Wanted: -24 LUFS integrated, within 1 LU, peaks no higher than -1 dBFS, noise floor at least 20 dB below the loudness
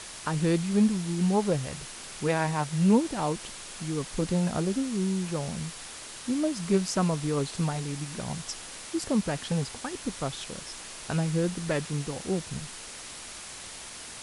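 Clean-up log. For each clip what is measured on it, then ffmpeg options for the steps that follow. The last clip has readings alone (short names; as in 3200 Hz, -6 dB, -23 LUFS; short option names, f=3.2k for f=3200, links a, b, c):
noise floor -43 dBFS; noise floor target -50 dBFS; loudness -29.5 LUFS; peak -10.0 dBFS; loudness target -24.0 LUFS
-> -af "afftdn=nr=7:nf=-43"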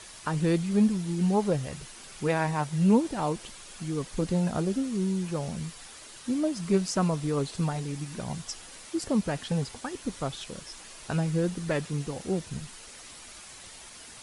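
noise floor -47 dBFS; noise floor target -50 dBFS
-> -af "afftdn=nr=6:nf=-47"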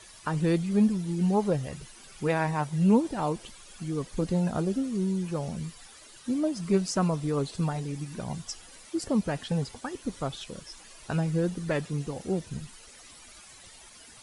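noise floor -51 dBFS; loudness -29.0 LUFS; peak -10.0 dBFS; loudness target -24.0 LUFS
-> -af "volume=5dB"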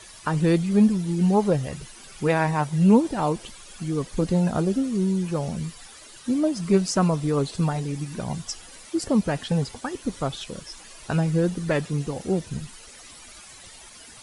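loudness -24.0 LUFS; peak -5.0 dBFS; noise floor -46 dBFS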